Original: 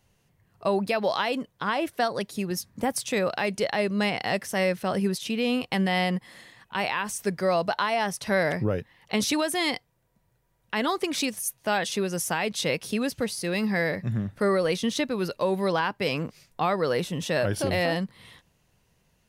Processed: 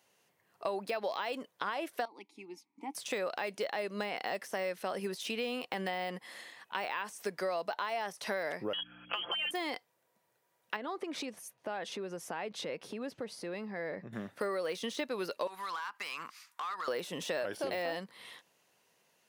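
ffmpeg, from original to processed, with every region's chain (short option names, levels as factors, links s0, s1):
-filter_complex "[0:a]asettb=1/sr,asplit=3[s0][s1][s2];[s0]atrim=end=2.054[s3];[s1]atrim=start=2.05:end=2.95,asetpts=PTS-STARTPTS,afade=t=in:d=0.004:c=qsin,afade=t=out:st=0.896:d=0.004:c=qsin,asplit=3[s4][s5][s6];[s4]bandpass=f=300:t=q:w=8,volume=1[s7];[s5]bandpass=f=870:t=q:w=8,volume=0.501[s8];[s6]bandpass=f=2240:t=q:w=8,volume=0.355[s9];[s7][s8][s9]amix=inputs=3:normalize=0,equalizer=f=7800:w=0.63:g=7.5[s10];[s2]atrim=start=2.946[s11];[s3][s10]acrossfade=d=0.004:c1=hsin:c2=qsin[s12];[s12][s11]acrossfade=d=0.004:c1=qsin:c2=hsin,asettb=1/sr,asplit=3[s13][s14][s15];[s13]atrim=end=8.734[s16];[s14]atrim=start=8.73:end=9.51,asetpts=PTS-STARTPTS,afade=t=in:d=0.004:c=qsin,afade=t=out:st=0.776:d=0.004:c=qsin,lowpass=f=2900:t=q:w=0.5098,lowpass=f=2900:t=q:w=0.6013,lowpass=f=2900:t=q:w=0.9,lowpass=f=2900:t=q:w=2.563,afreqshift=-3400,aeval=exprs='val(0)+0.00794*(sin(2*PI*60*n/s)+sin(2*PI*2*60*n/s)/2+sin(2*PI*3*60*n/s)/3+sin(2*PI*4*60*n/s)/4+sin(2*PI*5*60*n/s)/5)':c=same,aecho=1:1:5.8:0.91,atrim=end_sample=34398[s17];[s15]atrim=start=9.506[s18];[s16][s17]acrossfade=d=0.004:c1=hsin:c2=qsin[s19];[s19][s18]acrossfade=d=0.004:c1=qsin:c2=hsin,asettb=1/sr,asplit=3[s20][s21][s22];[s20]atrim=end=10.764[s23];[s21]atrim=start=10.76:end=14.13,asetpts=PTS-STARTPTS,afade=t=in:d=0.004:c=qsin,afade=t=out:st=3.366:d=0.004:c=qsin,lowpass=f=1200:p=1,lowshelf=f=200:g=8.5,acompressor=threshold=0.0282:ratio=4:attack=3.2:release=140:knee=1:detection=peak[s24];[s22]atrim=start=14.126[s25];[s23][s24]acrossfade=d=0.004:c1=hsin:c2=qsin[s26];[s26][s25]acrossfade=d=0.004:c1=qsin:c2=hsin,asettb=1/sr,asplit=3[s27][s28][s29];[s27]atrim=end=15.474[s30];[s28]atrim=start=15.47:end=16.88,asetpts=PTS-STARTPTS,afade=t=in:d=0.004:c=qsin,afade=t=out:st=1.406:d=0.004:c=qsin,lowshelf=f=780:t=q:w=3:g=-13,acompressor=threshold=0.02:ratio=5:attack=3.2:release=140:knee=1:detection=peak,asoftclip=type=hard:threshold=0.0224[s31];[s29]atrim=start=16.876[s32];[s30][s31]acrossfade=d=0.004:c1=hsin:c2=qsin[s33];[s33][s32]acrossfade=d=0.004:c1=qsin:c2=hsin,deesser=0.9,highpass=390,acompressor=threshold=0.0224:ratio=4"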